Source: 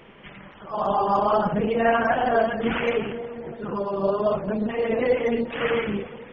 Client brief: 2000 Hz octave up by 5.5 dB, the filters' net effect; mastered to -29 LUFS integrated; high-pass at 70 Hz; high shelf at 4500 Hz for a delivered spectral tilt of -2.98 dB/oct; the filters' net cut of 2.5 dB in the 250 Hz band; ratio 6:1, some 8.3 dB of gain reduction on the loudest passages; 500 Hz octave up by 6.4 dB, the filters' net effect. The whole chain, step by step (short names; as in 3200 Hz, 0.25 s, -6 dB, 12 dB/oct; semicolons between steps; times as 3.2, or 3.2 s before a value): HPF 70 Hz; bell 250 Hz -5 dB; bell 500 Hz +8.5 dB; bell 2000 Hz +5 dB; high shelf 4500 Hz +8 dB; compressor 6:1, threshold -17 dBFS; gain -6.5 dB